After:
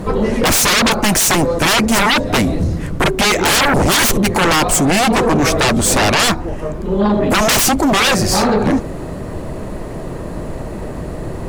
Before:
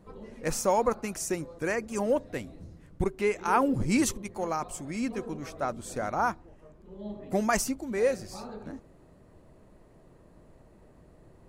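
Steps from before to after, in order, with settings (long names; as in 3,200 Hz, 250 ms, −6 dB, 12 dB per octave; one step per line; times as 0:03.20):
in parallel at +1.5 dB: downward compressor, threshold −33 dBFS, peak gain reduction 13.5 dB
on the sum: sine wavefolder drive 20 dB, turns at −9.5 dBFS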